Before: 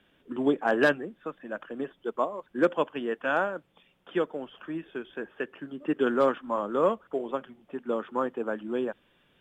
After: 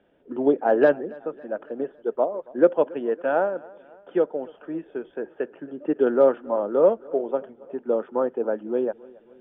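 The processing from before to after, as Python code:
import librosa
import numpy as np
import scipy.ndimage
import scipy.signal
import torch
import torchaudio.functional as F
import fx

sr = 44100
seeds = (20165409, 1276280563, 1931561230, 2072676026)

y = fx.lowpass(x, sr, hz=1400.0, slope=6)
y = fx.peak_eq(y, sr, hz=550.0, db=11.5, octaves=1.9)
y = fx.notch(y, sr, hz=1100.0, q=6.7)
y = fx.echo_feedback(y, sr, ms=277, feedback_pct=54, wet_db=-23)
y = y * librosa.db_to_amplitude(-3.0)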